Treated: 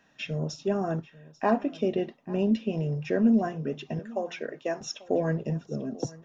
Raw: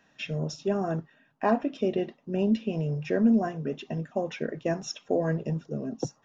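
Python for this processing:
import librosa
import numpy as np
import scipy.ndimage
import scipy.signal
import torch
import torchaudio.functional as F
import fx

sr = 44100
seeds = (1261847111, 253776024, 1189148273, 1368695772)

y = fx.highpass(x, sr, hz=400.0, slope=12, at=(3.99, 4.81))
y = y + 10.0 ** (-20.5 / 20.0) * np.pad(y, (int(841 * sr / 1000.0), 0))[:len(y)]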